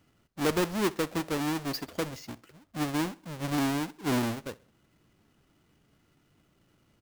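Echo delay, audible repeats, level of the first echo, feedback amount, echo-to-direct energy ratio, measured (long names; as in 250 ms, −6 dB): 65 ms, 2, −22.0 dB, 42%, −21.0 dB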